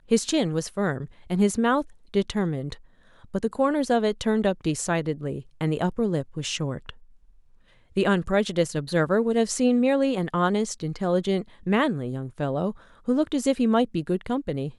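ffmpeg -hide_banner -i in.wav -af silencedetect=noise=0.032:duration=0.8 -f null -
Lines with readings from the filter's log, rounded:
silence_start: 6.90
silence_end: 7.97 | silence_duration: 1.07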